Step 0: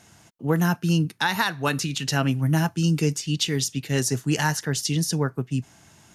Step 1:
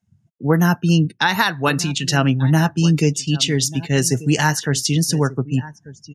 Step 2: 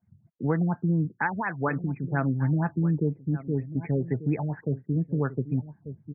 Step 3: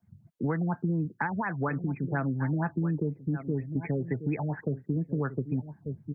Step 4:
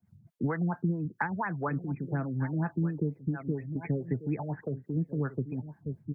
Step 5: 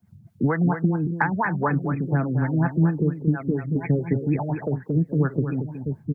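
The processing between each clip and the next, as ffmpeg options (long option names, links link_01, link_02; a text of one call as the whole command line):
ffmpeg -i in.wav -af "aecho=1:1:1189:0.133,afftdn=noise_reduction=36:noise_floor=-41,volume=6dB" out.wav
ffmpeg -i in.wav -af "acompressor=threshold=-29dB:ratio=2,afftfilt=real='re*lt(b*sr/1024,590*pow(2600/590,0.5+0.5*sin(2*PI*4.2*pts/sr)))':imag='im*lt(b*sr/1024,590*pow(2600/590,0.5+0.5*sin(2*PI*4.2*pts/sr)))':win_size=1024:overlap=0.75" out.wav
ffmpeg -i in.wav -filter_complex "[0:a]acrossover=split=230|1400[link_01][link_02][link_03];[link_01]acompressor=threshold=-36dB:ratio=4[link_04];[link_02]acompressor=threshold=-35dB:ratio=4[link_05];[link_03]acompressor=threshold=-41dB:ratio=4[link_06];[link_04][link_05][link_06]amix=inputs=3:normalize=0,volume=3.5dB" out.wav
ffmpeg -i in.wav -filter_complex "[0:a]acrossover=split=420[link_01][link_02];[link_01]aeval=exprs='val(0)*(1-0.7/2+0.7/2*cos(2*PI*4.6*n/s))':channel_layout=same[link_03];[link_02]aeval=exprs='val(0)*(1-0.7/2-0.7/2*cos(2*PI*4.6*n/s))':channel_layout=same[link_04];[link_03][link_04]amix=inputs=2:normalize=0,volume=1.5dB" out.wav
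ffmpeg -i in.wav -af "aecho=1:1:229:0.398,volume=8.5dB" out.wav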